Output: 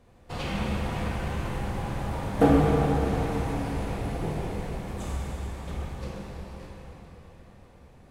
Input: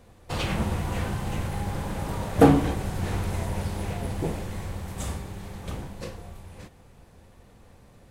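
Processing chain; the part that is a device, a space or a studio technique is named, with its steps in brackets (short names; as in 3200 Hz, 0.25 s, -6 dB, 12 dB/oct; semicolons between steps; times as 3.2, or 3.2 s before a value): swimming-pool hall (reverb RT60 4.3 s, pre-delay 19 ms, DRR -4 dB; high shelf 5600 Hz -7 dB); gain -5.5 dB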